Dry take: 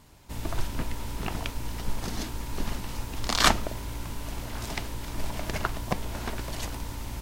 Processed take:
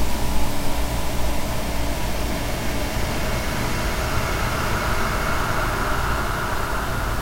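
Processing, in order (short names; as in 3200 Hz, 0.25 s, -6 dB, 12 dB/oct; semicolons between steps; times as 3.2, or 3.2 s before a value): AGC gain up to 12 dB; Paulstretch 14×, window 0.50 s, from 5.25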